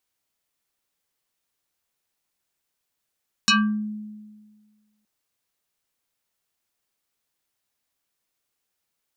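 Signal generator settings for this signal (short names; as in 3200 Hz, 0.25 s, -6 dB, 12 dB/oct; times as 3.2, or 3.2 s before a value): FM tone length 1.57 s, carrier 212 Hz, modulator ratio 6.47, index 5, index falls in 0.37 s exponential, decay 1.61 s, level -13 dB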